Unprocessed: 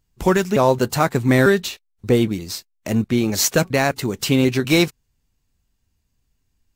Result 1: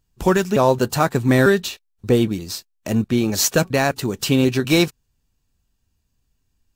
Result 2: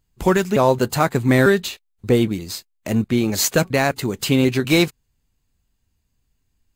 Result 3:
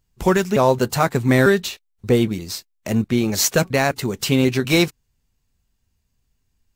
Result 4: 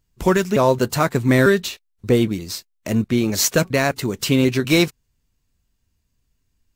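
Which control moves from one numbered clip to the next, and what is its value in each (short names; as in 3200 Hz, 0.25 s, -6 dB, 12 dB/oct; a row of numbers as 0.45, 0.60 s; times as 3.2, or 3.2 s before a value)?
notch, frequency: 2100, 5600, 300, 800 Hz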